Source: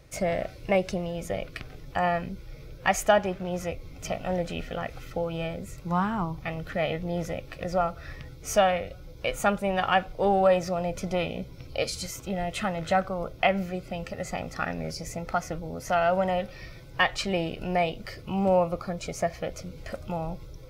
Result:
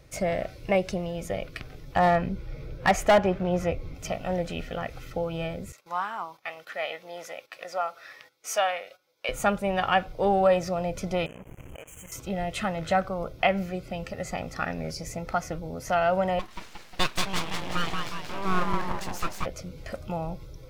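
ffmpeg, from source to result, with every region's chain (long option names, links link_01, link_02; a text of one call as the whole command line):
ffmpeg -i in.wav -filter_complex "[0:a]asettb=1/sr,asplit=3[link_01][link_02][link_03];[link_01]atrim=end=1.964[link_04];[link_02]atrim=start=1.96:end=3.95,asetpts=PTS-STARTPTS,afade=type=in:duration=0.004:curve=qsin,afade=type=out:start_time=1.986:duration=0.004:curve=qsin,acontrast=36,highshelf=frequency=3600:gain=-11,asoftclip=type=hard:threshold=-14dB[link_05];[link_03]atrim=start=3.946[link_06];[link_04][link_05]acrossfade=duration=0.004:curve1=hsin:curve2=qsin[link_07];[link_07][link_06]acrossfade=duration=0.004:curve1=qsin:curve2=hsin,asettb=1/sr,asplit=3[link_08][link_09][link_10];[link_08]atrim=end=5.724[link_11];[link_09]atrim=start=5.72:end=9.29,asetpts=PTS-STARTPTS,afade=type=in:duration=0.004:curve=qsin,afade=type=out:start_time=3.566:duration=0.004:curve=qsin,highpass=740,agate=range=-13dB:threshold=-55dB:ratio=16:release=100:detection=peak[link_12];[link_10]atrim=start=9.286[link_13];[link_11][link_12]acrossfade=duration=0.004:curve1=hsin:curve2=qsin[link_14];[link_14][link_13]acrossfade=duration=0.004:curve1=qsin:curve2=hsin,asettb=1/sr,asplit=3[link_15][link_16][link_17];[link_15]atrim=end=11.264[link_18];[link_16]atrim=start=11.26:end=12.12,asetpts=PTS-STARTPTS,afade=type=in:duration=0.004:curve=qsin,afade=type=out:start_time=0.856:duration=0.004:curve=qsin,acompressor=threshold=-39dB:ratio=12:attack=3.2:release=140:knee=1:detection=peak,acrusher=bits=6:mix=0:aa=0.5,asuperstop=centerf=4500:order=12:qfactor=1.4[link_19];[link_17]atrim=start=12.116[link_20];[link_18][link_19]acrossfade=duration=0.004:curve1=hsin:curve2=qsin[link_21];[link_21][link_20]acrossfade=duration=0.004:curve1=qsin:curve2=hsin,asettb=1/sr,asplit=3[link_22][link_23][link_24];[link_22]atrim=end=16.394[link_25];[link_23]atrim=start=16.39:end=19.46,asetpts=PTS-STARTPTS,afade=type=in:duration=0.004:curve=qsin,afade=type=out:start_time=3.066:duration=0.004:curve=qsin,highpass=300,asplit=9[link_26][link_27][link_28][link_29][link_30][link_31][link_32][link_33][link_34];[link_27]adelay=179,afreqshift=-58,volume=-3dB[link_35];[link_28]adelay=358,afreqshift=-116,volume=-7.9dB[link_36];[link_29]adelay=537,afreqshift=-174,volume=-12.8dB[link_37];[link_30]adelay=716,afreqshift=-232,volume=-17.6dB[link_38];[link_31]adelay=895,afreqshift=-290,volume=-22.5dB[link_39];[link_32]adelay=1074,afreqshift=-348,volume=-27.4dB[link_40];[link_33]adelay=1253,afreqshift=-406,volume=-32.3dB[link_41];[link_34]adelay=1432,afreqshift=-464,volume=-37.2dB[link_42];[link_26][link_35][link_36][link_37][link_38][link_39][link_40][link_41][link_42]amix=inputs=9:normalize=0,atrim=end_sample=135387,aeval=exprs='abs(val(0))':channel_layout=same[link_43];[link_24]atrim=start=19.456[link_44];[link_25][link_43]acrossfade=duration=0.004:curve1=hsin:curve2=qsin[link_45];[link_45][link_44]acrossfade=duration=0.004:curve1=qsin:curve2=hsin" out.wav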